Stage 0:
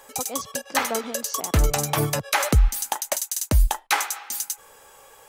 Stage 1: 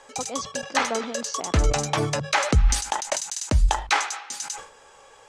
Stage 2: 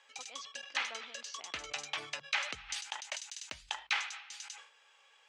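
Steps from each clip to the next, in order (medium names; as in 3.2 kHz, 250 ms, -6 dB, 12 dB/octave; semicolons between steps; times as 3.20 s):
low-pass 7.3 kHz 24 dB/octave; hum notches 50/100/150/200 Hz; decay stretcher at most 110 dB/s
band-pass filter 2.8 kHz, Q 1.7; trim -5 dB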